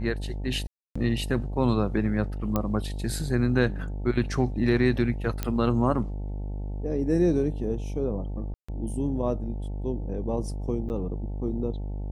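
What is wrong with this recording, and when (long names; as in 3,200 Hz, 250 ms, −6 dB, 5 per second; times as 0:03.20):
mains buzz 50 Hz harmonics 18 −32 dBFS
0:00.67–0:00.95: drop-out 285 ms
0:02.56: click −12 dBFS
0:05.43: click −13 dBFS
0:08.54–0:08.69: drop-out 145 ms
0:10.89–0:10.90: drop-out 9.4 ms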